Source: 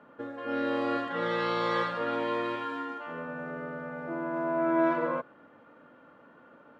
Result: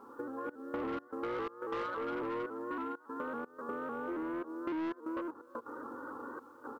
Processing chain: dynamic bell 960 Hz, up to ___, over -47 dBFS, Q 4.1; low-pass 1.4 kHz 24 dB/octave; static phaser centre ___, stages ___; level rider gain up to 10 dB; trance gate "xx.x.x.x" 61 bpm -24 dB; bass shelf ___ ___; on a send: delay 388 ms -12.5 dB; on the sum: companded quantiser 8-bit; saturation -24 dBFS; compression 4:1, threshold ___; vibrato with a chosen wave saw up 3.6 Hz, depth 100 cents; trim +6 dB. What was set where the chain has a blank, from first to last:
-7 dB, 640 Hz, 6, 74 Hz, -11.5 dB, -45 dBFS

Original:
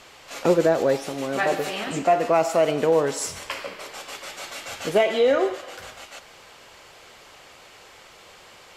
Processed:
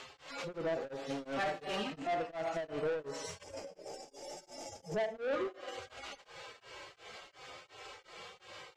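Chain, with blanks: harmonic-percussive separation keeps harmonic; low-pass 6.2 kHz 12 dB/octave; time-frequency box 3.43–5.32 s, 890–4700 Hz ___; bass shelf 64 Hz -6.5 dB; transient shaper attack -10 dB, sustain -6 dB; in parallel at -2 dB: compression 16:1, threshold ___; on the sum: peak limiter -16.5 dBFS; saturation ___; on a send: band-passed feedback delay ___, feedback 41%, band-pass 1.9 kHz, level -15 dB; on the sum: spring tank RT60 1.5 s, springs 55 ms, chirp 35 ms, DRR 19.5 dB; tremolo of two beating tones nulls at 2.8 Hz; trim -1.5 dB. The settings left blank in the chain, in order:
-18 dB, -35 dBFS, -28.5 dBFS, 72 ms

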